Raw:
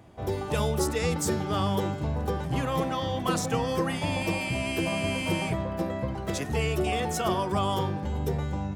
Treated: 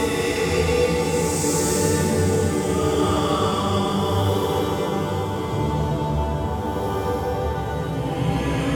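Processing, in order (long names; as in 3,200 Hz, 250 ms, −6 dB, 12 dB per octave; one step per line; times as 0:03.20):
feedback delay network reverb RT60 3.4 s, high-frequency decay 0.65×, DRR 2.5 dB
extreme stretch with random phases 5.2×, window 0.25 s, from 0:00.94
level +4.5 dB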